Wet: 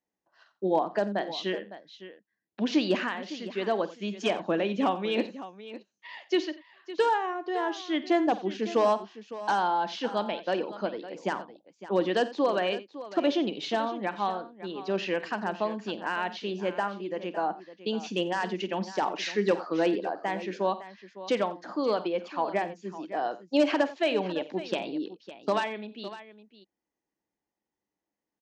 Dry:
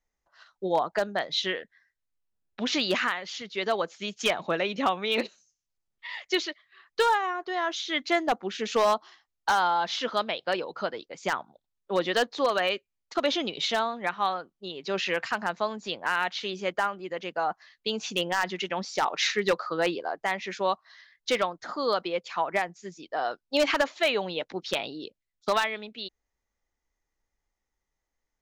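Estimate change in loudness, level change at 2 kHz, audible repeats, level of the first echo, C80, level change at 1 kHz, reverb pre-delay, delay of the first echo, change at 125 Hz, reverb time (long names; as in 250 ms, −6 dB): −1.0 dB, −5.5 dB, 3, −16.0 dB, no reverb audible, −2.0 dB, no reverb audible, 49 ms, +3.0 dB, no reverb audible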